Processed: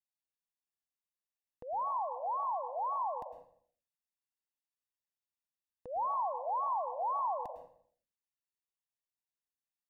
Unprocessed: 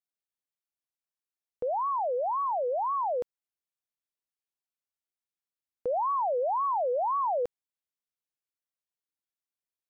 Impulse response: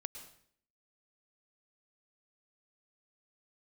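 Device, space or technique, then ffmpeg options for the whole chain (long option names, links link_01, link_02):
microphone above a desk: -filter_complex "[0:a]aecho=1:1:1.1:0.72[link_01];[1:a]atrim=start_sample=2205[link_02];[link_01][link_02]afir=irnorm=-1:irlink=0,volume=-6dB"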